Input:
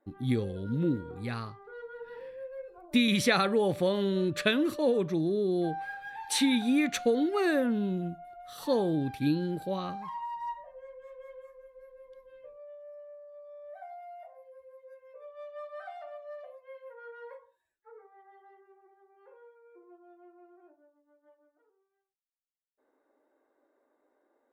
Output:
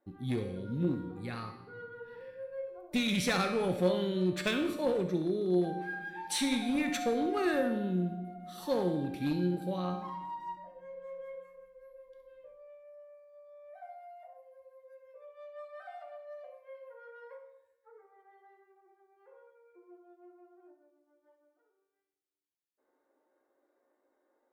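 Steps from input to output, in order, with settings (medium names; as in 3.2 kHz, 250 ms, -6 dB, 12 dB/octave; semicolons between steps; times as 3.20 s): on a send at -9.5 dB: reverberation RT60 1.3 s, pre-delay 64 ms; on the sum: one-sided clip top -23 dBFS; feedback comb 180 Hz, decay 0.71 s, harmonics all, mix 80%; trim +8 dB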